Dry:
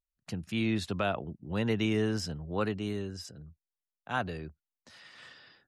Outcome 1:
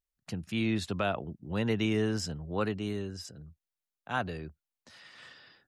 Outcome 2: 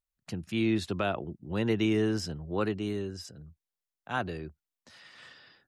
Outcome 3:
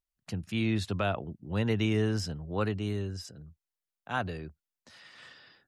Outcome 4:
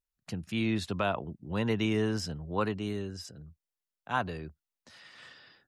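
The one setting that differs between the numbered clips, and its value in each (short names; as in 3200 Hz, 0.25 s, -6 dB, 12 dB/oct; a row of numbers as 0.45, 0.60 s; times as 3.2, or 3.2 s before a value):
dynamic EQ, frequency: 7300, 350, 100, 1000 Hz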